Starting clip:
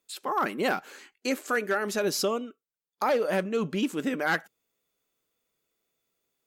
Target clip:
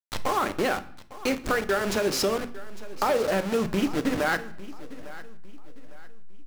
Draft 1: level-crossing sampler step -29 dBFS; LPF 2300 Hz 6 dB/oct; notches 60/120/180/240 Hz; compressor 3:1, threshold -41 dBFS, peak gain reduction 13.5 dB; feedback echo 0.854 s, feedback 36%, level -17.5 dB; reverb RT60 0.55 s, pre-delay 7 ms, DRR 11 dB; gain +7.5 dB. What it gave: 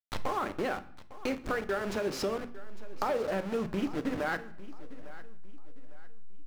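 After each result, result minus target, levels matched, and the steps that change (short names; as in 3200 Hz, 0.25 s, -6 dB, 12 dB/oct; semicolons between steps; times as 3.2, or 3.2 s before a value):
compressor: peak gain reduction +6.5 dB; 8000 Hz band -6.0 dB
change: compressor 3:1, threshold -31 dBFS, peak gain reduction 6.5 dB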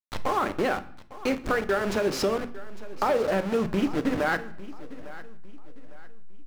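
8000 Hz band -6.0 dB
change: LPF 7200 Hz 6 dB/oct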